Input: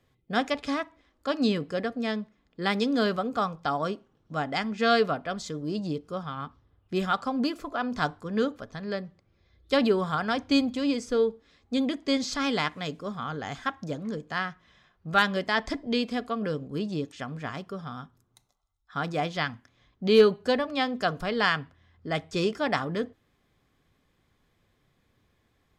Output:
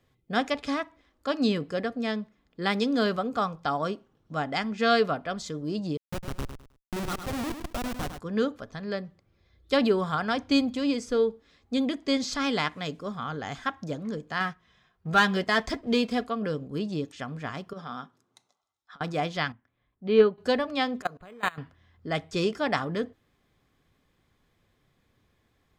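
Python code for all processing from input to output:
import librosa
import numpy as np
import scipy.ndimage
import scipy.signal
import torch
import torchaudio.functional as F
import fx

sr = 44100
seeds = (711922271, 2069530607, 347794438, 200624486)

y = fx.chain(x, sr, fx.schmitt(flips_db=-28.0),
    fx.echo_feedback(ms=104, feedback_pct=26, wet_db=-8.5), at=(5.97, 8.19))
y = fx.chain(y, sr, fx.leveller(passes=1),
    fx.notch_comb(f0_hz=290.0), at=(14.4, 16.25))
y = fx.chain(y, sr, fx.bandpass_edges(low_hz=240.0, high_hz=7600.0),
    fx.over_compress(threshold_db=-39.0, ratio=-0.5), at=(17.73, 19.01))
y = fx.chain(y, sr, fx.lowpass(hz=2400.0, slope=12),
    fx.upward_expand(threshold_db=-33.0, expansion=1.5), at=(19.52, 20.38))
y = fx.chain(y, sr, fx.low_shelf(hz=140.0, db=-6.5),
    fx.level_steps(step_db=23),
    fx.resample_linear(factor=8), at=(21.02, 21.58))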